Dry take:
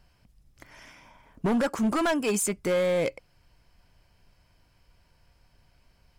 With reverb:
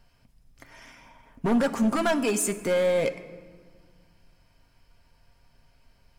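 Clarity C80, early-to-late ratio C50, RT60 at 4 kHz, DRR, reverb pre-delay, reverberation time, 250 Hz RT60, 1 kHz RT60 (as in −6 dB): 14.5 dB, 13.0 dB, 1.0 s, 6.5 dB, 4 ms, 1.6 s, 2.2 s, 1.5 s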